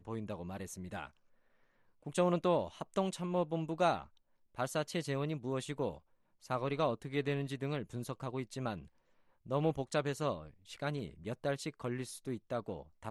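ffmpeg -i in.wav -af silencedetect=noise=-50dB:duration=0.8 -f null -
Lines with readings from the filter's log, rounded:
silence_start: 1.08
silence_end: 2.06 | silence_duration: 0.99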